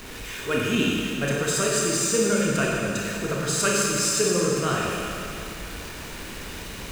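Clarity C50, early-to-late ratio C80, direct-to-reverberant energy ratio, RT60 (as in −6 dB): −1.5 dB, 0.0 dB, −3.5 dB, 2.7 s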